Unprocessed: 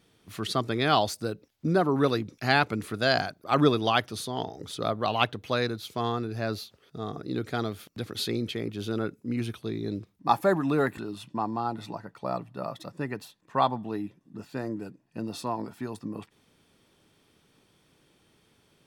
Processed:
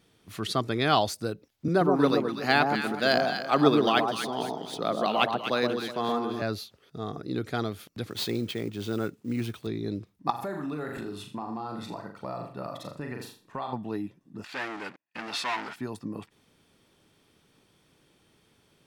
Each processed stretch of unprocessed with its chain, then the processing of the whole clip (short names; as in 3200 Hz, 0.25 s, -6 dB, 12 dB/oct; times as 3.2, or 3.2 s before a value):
1.68–6.42 median filter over 3 samples + HPF 160 Hz 24 dB/oct + echo with dull and thin repeats by turns 0.123 s, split 1100 Hz, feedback 54%, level -2.5 dB
8.09–9.67 CVSD 64 kbps + careless resampling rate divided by 2×, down filtered, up hold + HPF 62 Hz
10.3–13.73 flutter echo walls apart 6.9 m, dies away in 0.41 s + compressor 5:1, threshold -31 dBFS + mismatched tape noise reduction decoder only
14.44–15.76 sample leveller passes 5 + band-pass 2100 Hz, Q 1.1
whole clip: dry